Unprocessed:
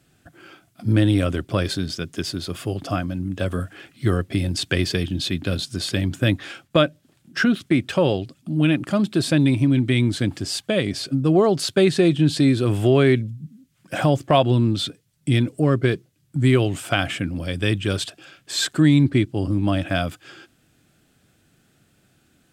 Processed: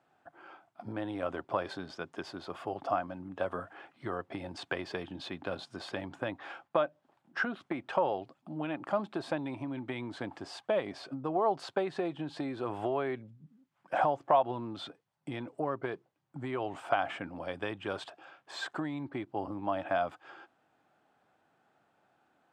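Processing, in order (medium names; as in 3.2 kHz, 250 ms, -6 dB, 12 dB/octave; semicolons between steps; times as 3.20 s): compression, threshold -19 dBFS, peak gain reduction 8.5 dB; band-pass filter 870 Hz, Q 3.2; trim +5.5 dB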